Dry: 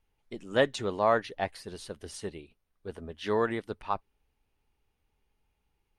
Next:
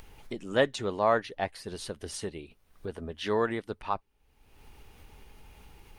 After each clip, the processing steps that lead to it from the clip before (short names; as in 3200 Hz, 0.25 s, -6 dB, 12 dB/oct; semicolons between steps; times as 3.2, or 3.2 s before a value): upward compressor, threshold -31 dBFS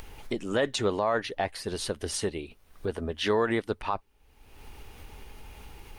bell 160 Hz -3.5 dB 0.7 oct; limiter -22.5 dBFS, peak gain reduction 10.5 dB; gain +6.5 dB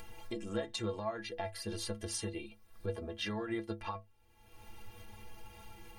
compressor 6:1, threshold -30 dBFS, peak gain reduction 9 dB; metallic resonator 100 Hz, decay 0.29 s, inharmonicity 0.03; gain +5 dB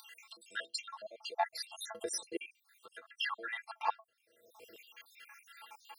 random spectral dropouts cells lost 68%; LFO high-pass saw down 0.42 Hz 440–2000 Hz; gain +5 dB